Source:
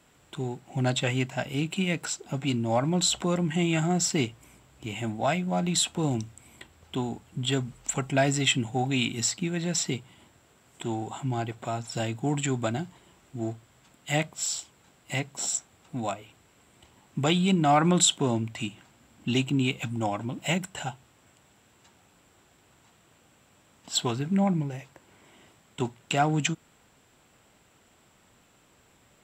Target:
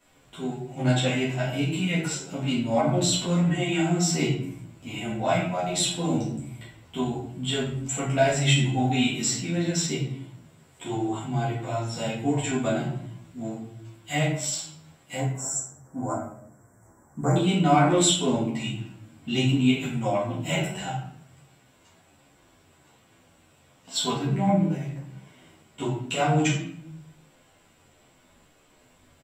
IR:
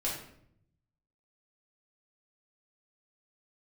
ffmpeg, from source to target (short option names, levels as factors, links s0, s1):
-filter_complex "[0:a]asettb=1/sr,asplit=3[s0][s1][s2];[s0]atrim=end=15.154[s3];[s1]atrim=start=15.15:end=17.36,asetpts=PTS-STARTPTS,afade=t=in:d=0.004:c=qsin,afade=t=out:st=2.206:d=0.004:c=qsin,asuperstop=centerf=3300:order=8:qfactor=0.76[s4];[s2]atrim=start=17.356[s5];[s3][s4]acrossfade=d=0.004:c1=hsin:c2=qsin[s6];[s6][s5]acrossfade=d=0.004:c1=qsin:c2=hsin[s7];[1:a]atrim=start_sample=2205[s8];[s7][s8]afir=irnorm=-1:irlink=0,asplit=2[s9][s10];[s10]adelay=10.7,afreqshift=-1.4[s11];[s9][s11]amix=inputs=2:normalize=1"